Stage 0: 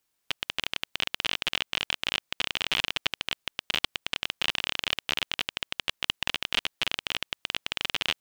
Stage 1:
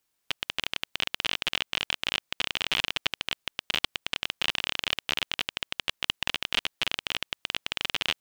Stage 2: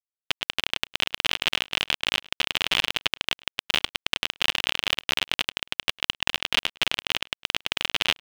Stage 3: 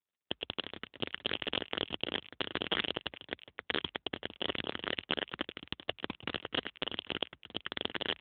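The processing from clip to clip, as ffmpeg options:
-af anull
-filter_complex "[0:a]asplit=2[s0][s1];[s1]alimiter=limit=0.251:level=0:latency=1,volume=0.891[s2];[s0][s2]amix=inputs=2:normalize=0,acrusher=bits=5:mix=0:aa=0.000001,asplit=2[s3][s4];[s4]adelay=105,volume=0.0562,highshelf=f=4000:g=-2.36[s5];[s3][s5]amix=inputs=2:normalize=0"
-af "afreqshift=47,aeval=exprs='(mod(2.66*val(0)+1,2)-1)/2.66':c=same" -ar 8000 -c:a libopencore_amrnb -b:a 7950

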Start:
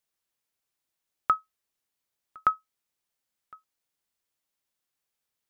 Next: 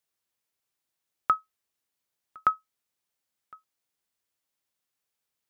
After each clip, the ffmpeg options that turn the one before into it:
-af "highpass=46"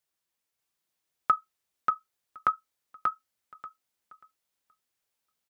-af "flanger=delay=1.2:depth=5.1:regen=-45:speed=1.8:shape=triangular,aecho=1:1:586|1172|1758:0.708|0.12|0.0205,volume=1.5"

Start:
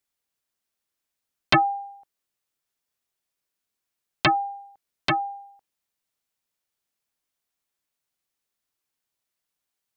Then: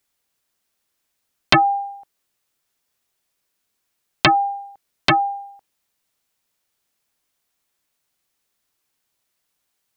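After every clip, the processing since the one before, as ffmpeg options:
-af "acompressor=threshold=0.0891:ratio=3,volume=2.82"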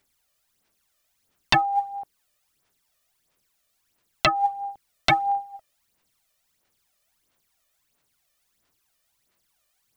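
-af "aphaser=in_gain=1:out_gain=1:delay=1.7:decay=0.65:speed=1.5:type=sinusoidal,alimiter=limit=0.447:level=0:latency=1:release=492"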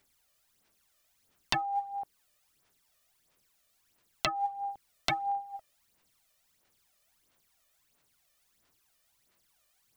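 -af "acompressor=threshold=0.0224:ratio=2.5"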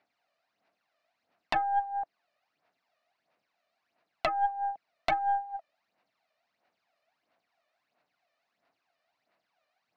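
-af "highpass=230,equalizer=f=390:t=q:w=4:g=-6,equalizer=f=690:t=q:w=4:g=10,equalizer=f=3300:t=q:w=4:g=-9,lowpass=f=3900:w=0.5412,lowpass=f=3900:w=1.3066,aeval=exprs='0.178*(cos(1*acos(clip(val(0)/0.178,-1,1)))-cos(1*PI/2))+0.0141*(cos(4*acos(clip(val(0)/0.178,-1,1)))-cos(4*PI/2))':c=same"

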